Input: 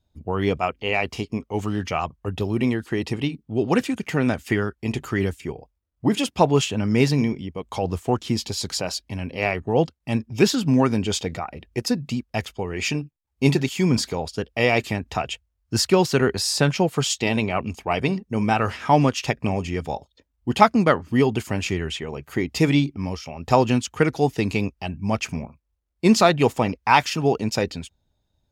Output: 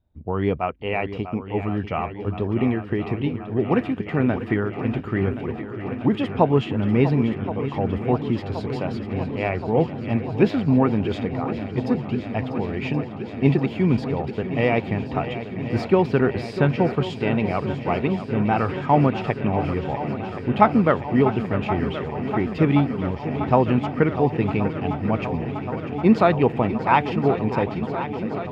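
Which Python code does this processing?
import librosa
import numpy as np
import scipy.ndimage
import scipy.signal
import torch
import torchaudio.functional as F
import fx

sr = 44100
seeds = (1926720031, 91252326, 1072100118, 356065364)

y = fx.air_absorb(x, sr, metres=490.0)
y = fx.echo_swing(y, sr, ms=1074, ratio=1.5, feedback_pct=78, wet_db=-12)
y = y * 10.0 ** (1.0 / 20.0)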